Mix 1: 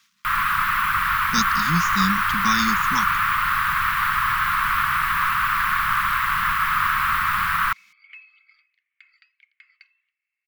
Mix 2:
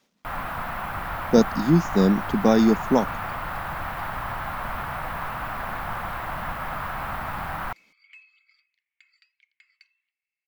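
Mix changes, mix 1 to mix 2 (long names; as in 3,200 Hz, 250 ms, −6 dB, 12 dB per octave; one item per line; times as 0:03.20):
speech +3.5 dB
second sound: remove head-to-tape spacing loss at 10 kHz 29 dB
master: remove drawn EQ curve 190 Hz 0 dB, 430 Hz −25 dB, 670 Hz −27 dB, 1,100 Hz +13 dB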